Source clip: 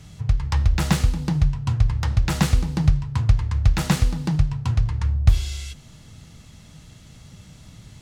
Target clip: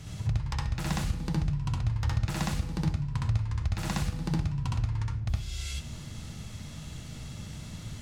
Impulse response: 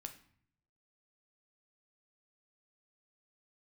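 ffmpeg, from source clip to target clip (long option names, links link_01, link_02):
-filter_complex "[0:a]acompressor=threshold=-32dB:ratio=4,asplit=2[link_01][link_02];[1:a]atrim=start_sample=2205,adelay=64[link_03];[link_02][link_03]afir=irnorm=-1:irlink=0,volume=6dB[link_04];[link_01][link_04]amix=inputs=2:normalize=0"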